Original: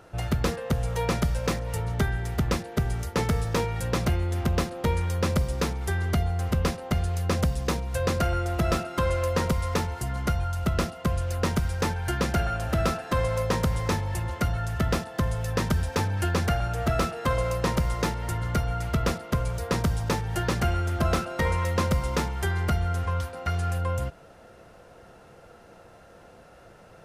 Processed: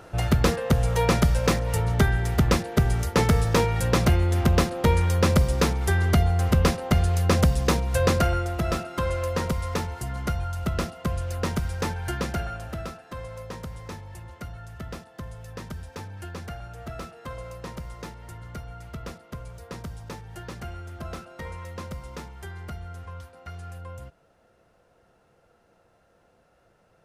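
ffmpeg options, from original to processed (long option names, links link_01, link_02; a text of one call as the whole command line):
ffmpeg -i in.wav -af "volume=5dB,afade=type=out:start_time=8.06:duration=0.48:silence=0.473151,afade=type=out:start_time=12.08:duration=0.85:silence=0.298538" out.wav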